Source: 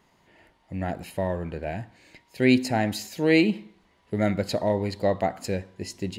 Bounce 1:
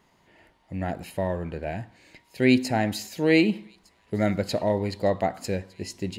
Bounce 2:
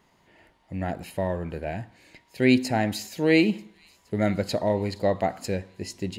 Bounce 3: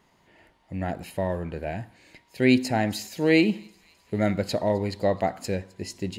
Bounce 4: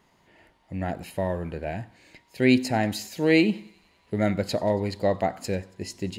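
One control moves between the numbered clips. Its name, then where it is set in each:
feedback echo behind a high-pass, time: 1208 ms, 469 ms, 260 ms, 93 ms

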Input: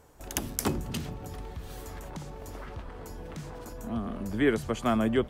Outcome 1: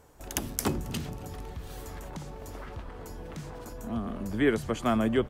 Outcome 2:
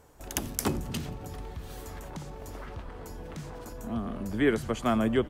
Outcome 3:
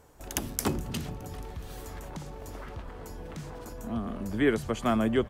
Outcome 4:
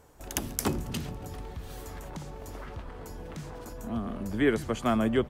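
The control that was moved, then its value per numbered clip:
frequency-shifting echo, time: 271 ms, 89 ms, 419 ms, 139 ms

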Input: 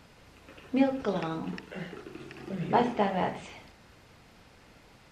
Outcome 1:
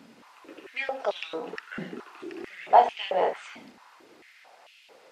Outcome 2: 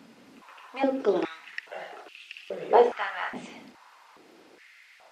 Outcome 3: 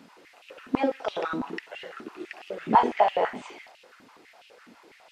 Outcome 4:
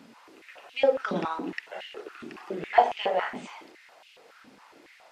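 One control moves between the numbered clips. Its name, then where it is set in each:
step-sequenced high-pass, rate: 4.5 Hz, 2.4 Hz, 12 Hz, 7.2 Hz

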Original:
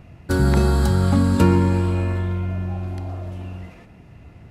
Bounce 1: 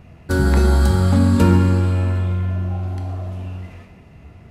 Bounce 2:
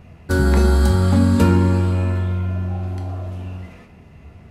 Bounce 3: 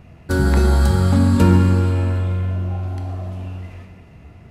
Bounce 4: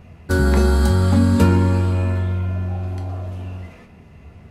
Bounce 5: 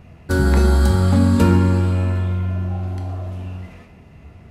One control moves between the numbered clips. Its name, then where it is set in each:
gated-style reverb, gate: 350 ms, 130 ms, 530 ms, 80 ms, 210 ms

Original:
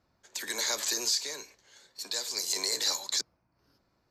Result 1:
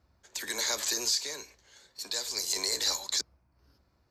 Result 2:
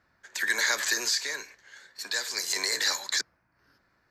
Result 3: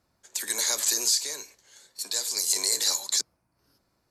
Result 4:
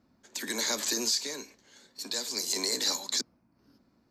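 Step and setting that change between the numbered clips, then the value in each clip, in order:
peaking EQ, frequency: 65 Hz, 1.7 kHz, 9.9 kHz, 240 Hz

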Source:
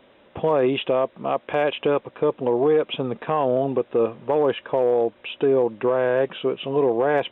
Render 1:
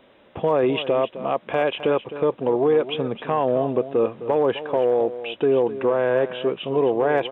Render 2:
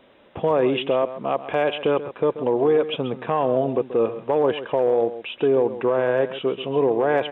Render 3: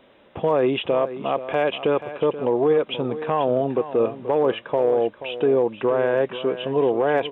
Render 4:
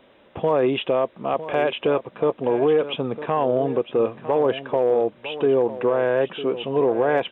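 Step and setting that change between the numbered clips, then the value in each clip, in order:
delay, time: 260 ms, 134 ms, 481 ms, 954 ms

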